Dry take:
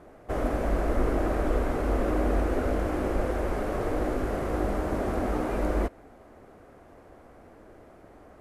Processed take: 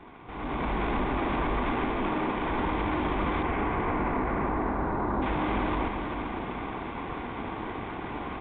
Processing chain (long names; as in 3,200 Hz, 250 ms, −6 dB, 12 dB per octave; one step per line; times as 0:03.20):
lower of the sound and its delayed copy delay 0.86 ms
low-shelf EQ 140 Hz −10 dB
notch filter 1,300 Hz, Q 5.9
brickwall limiter −41 dBFS, peak gain reduction 21.5 dB
0:01.72–0:02.50: parametric band 61 Hz −14 dB 0.91 octaves
repeating echo 389 ms, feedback 55%, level −7.5 dB
automatic gain control gain up to 13.5 dB
0:03.42–0:05.21: low-pass filter 3,000 Hz → 1,500 Hz 24 dB per octave
level +6.5 dB
mu-law 64 kbit/s 8,000 Hz